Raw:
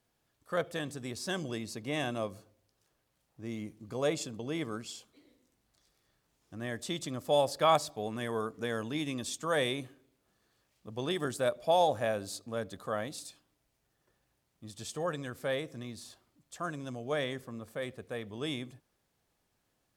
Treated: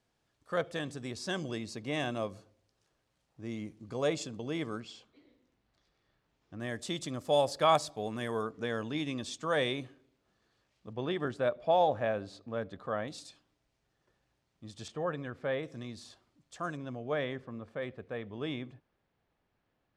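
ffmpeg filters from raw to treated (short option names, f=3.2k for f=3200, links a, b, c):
-af "asetnsamples=n=441:p=0,asendcmd='4.8 lowpass f 3700;6.6 lowpass f 9200;8.43 lowpass f 5600;10.93 lowpass f 2800;13.08 lowpass f 5900;14.88 lowpass f 2500;15.63 lowpass f 6400;16.77 lowpass f 2800',lowpass=7.2k"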